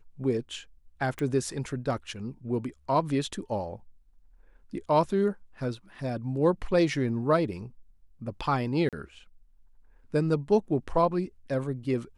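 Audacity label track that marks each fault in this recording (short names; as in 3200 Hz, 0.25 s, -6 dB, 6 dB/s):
1.190000	1.190000	pop -20 dBFS
8.890000	8.930000	gap 37 ms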